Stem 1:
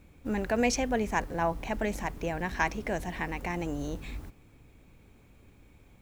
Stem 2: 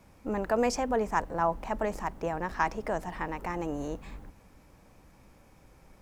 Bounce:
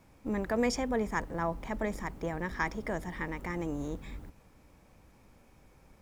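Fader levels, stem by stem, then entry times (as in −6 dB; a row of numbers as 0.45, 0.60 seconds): −9.0, −3.5 decibels; 0.00, 0.00 seconds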